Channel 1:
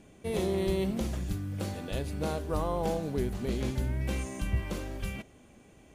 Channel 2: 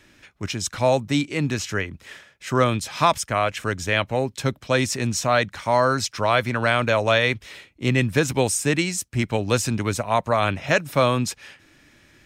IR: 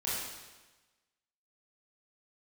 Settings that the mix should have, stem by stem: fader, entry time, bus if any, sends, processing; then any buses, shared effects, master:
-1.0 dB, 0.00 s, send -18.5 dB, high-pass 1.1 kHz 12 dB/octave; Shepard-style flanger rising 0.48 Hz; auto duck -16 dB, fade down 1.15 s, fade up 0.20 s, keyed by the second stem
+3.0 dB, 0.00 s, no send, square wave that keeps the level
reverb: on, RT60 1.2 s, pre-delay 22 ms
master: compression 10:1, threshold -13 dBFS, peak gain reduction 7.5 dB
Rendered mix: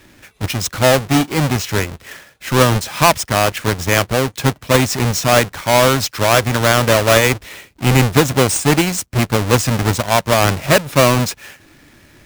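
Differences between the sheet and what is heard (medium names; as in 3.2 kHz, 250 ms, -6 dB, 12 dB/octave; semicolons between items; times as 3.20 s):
stem 1 -1.0 dB -> -10.5 dB; master: missing compression 10:1, threshold -13 dBFS, peak gain reduction 7.5 dB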